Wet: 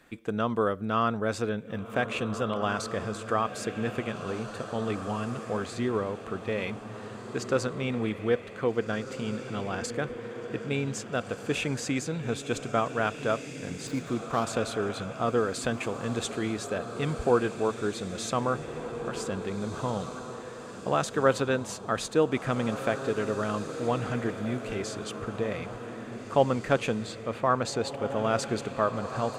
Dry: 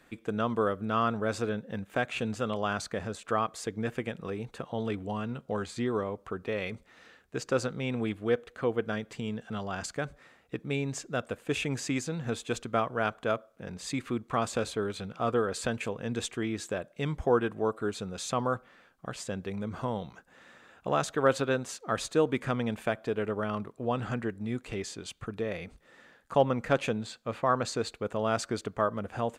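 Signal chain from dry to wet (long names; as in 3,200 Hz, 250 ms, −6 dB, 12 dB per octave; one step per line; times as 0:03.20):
0:13.87–0:14.45: running median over 15 samples
feedback delay with all-pass diffusion 1,735 ms, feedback 41%, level −9 dB
level +1.5 dB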